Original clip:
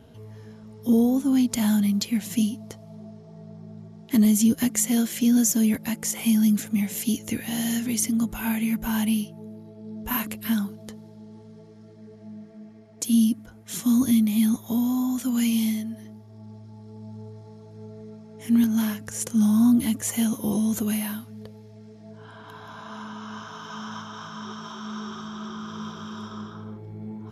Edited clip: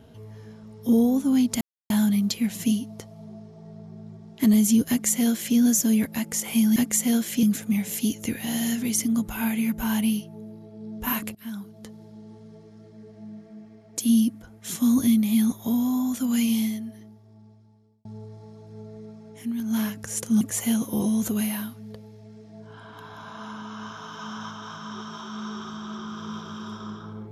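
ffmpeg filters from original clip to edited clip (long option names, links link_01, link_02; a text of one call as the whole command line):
ffmpeg -i in.wav -filter_complex "[0:a]asplit=9[link_01][link_02][link_03][link_04][link_05][link_06][link_07][link_08][link_09];[link_01]atrim=end=1.61,asetpts=PTS-STARTPTS,afade=type=out:start_time=1.606:duration=0.004:curve=hsin,apad=pad_dur=0.29[link_10];[link_02]atrim=start=1.61:end=6.472,asetpts=PTS-STARTPTS,afade=type=in:duration=0.004:curve=hsin[link_11];[link_03]atrim=start=4.598:end=5.272[link_12];[link_04]atrim=start=6.468:end=10.39,asetpts=PTS-STARTPTS,afade=type=out:start_time=3.918:duration=0.004:curve=hsin:silence=0.0841395[link_13];[link_05]atrim=start=10.39:end=17.09,asetpts=PTS-STARTPTS,afade=type=in:duration=0.7:silence=0.0841395,afade=type=out:start_time=5.16:duration=1.54[link_14];[link_06]atrim=start=17.09:end=18.56,asetpts=PTS-STARTPTS,afade=type=in:duration=0.004:curve=hsin,afade=type=out:start_time=1.23:duration=0.24:silence=0.266073[link_15];[link_07]atrim=start=18.56:end=18.61,asetpts=PTS-STARTPTS,volume=-11.5dB[link_16];[link_08]atrim=start=18.61:end=19.452,asetpts=PTS-STARTPTS,afade=type=in:duration=0.24:silence=0.266073[link_17];[link_09]atrim=start=19.918[link_18];[link_10][link_11]concat=n=2:v=0:a=1[link_19];[link_19][link_12]acrossfade=duration=0.004:curve1=hsin:curve2=hsin[link_20];[link_13][link_14][link_15][link_16][link_17]concat=n=5:v=0:a=1[link_21];[link_20][link_21]acrossfade=duration=0.004:curve1=hsin:curve2=hsin[link_22];[link_22][link_18]acrossfade=duration=0.004:curve1=hsin:curve2=hsin" out.wav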